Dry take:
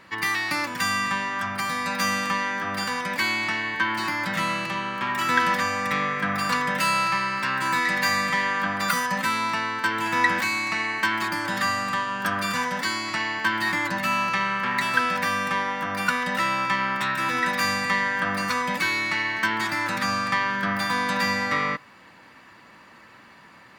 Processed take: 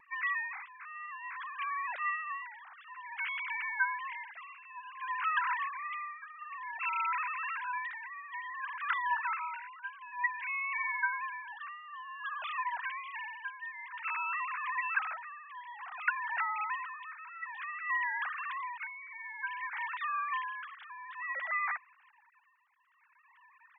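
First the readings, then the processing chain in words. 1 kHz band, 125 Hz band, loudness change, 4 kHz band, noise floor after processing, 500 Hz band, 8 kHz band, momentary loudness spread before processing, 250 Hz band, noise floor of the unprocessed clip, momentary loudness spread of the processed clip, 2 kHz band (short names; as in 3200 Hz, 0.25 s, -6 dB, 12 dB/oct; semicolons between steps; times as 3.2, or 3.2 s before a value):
-11.0 dB, under -40 dB, -12.0 dB, -23.5 dB, -65 dBFS, under -30 dB, under -40 dB, 4 LU, under -40 dB, -50 dBFS, 13 LU, -11.5 dB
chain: sine-wave speech; tremolo 0.55 Hz, depth 78%; wow and flutter 28 cents; gain -8.5 dB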